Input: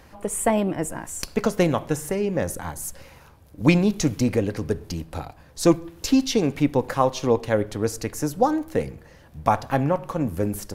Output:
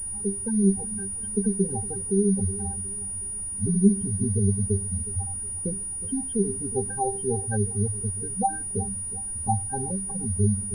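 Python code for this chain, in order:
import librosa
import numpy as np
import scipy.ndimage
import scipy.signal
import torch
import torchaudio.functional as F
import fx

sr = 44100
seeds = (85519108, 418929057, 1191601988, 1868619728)

y = fx.low_shelf(x, sr, hz=280.0, db=6.5)
y = fx.octave_resonator(y, sr, note='G', decay_s=0.2)
y = fx.echo_feedback(y, sr, ms=365, feedback_pct=37, wet_db=-16.0)
y = fx.spec_gate(y, sr, threshold_db=-15, keep='strong')
y = fx.dmg_noise_colour(y, sr, seeds[0], colour='brown', level_db=-50.0)
y = fx.pwm(y, sr, carrier_hz=9600.0)
y = y * librosa.db_to_amplitude(5.0)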